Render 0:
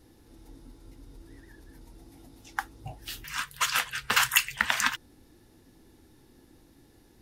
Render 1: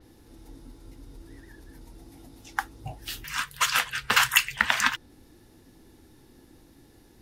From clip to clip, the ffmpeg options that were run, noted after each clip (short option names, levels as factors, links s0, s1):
-af "adynamicequalizer=threshold=0.00631:dfrequency=5500:dqfactor=0.7:tfrequency=5500:tqfactor=0.7:attack=5:release=100:ratio=0.375:range=2.5:mode=cutabove:tftype=highshelf,volume=1.41"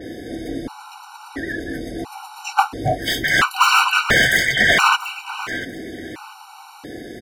-filter_complex "[0:a]asplit=2[s0][s1];[s1]highpass=f=720:p=1,volume=63.1,asoftclip=type=tanh:threshold=0.891[s2];[s0][s2]amix=inputs=2:normalize=0,lowpass=f=1400:p=1,volume=0.501,aecho=1:1:689|1378:0.2|0.0439,afftfilt=real='re*gt(sin(2*PI*0.73*pts/sr)*(1-2*mod(floor(b*sr/1024/760),2)),0)':imag='im*gt(sin(2*PI*0.73*pts/sr)*(1-2*mod(floor(b*sr/1024/760),2)),0)':win_size=1024:overlap=0.75,volume=1.26"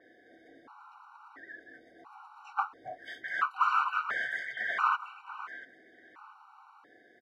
-af "bandpass=f=1200:t=q:w=3.7:csg=0,volume=0.376"